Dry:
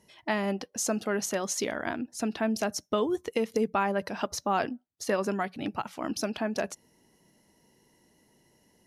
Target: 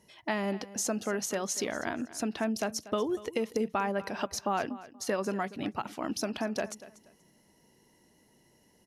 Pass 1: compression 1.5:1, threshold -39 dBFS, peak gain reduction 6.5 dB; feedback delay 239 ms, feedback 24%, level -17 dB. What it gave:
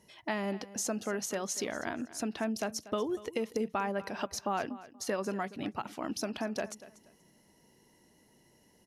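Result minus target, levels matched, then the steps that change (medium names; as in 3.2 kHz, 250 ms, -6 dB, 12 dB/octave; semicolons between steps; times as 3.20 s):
compression: peak gain reduction +2.5 dB
change: compression 1.5:1, threshold -31.5 dBFS, peak gain reduction 4 dB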